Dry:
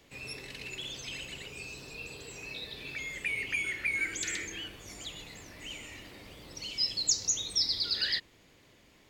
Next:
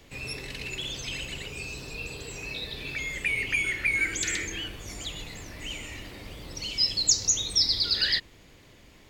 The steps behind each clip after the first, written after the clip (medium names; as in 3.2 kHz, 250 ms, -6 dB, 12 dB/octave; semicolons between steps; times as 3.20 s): bass shelf 84 Hz +10 dB; trim +5.5 dB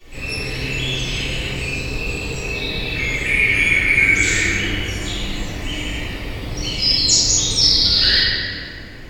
reverberation RT60 2.6 s, pre-delay 3 ms, DRR -20 dB; trim -7.5 dB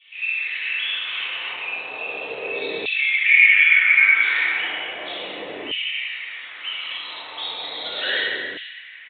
LFO high-pass saw down 0.35 Hz 390–2900 Hz; resampled via 8 kHz; trim -3 dB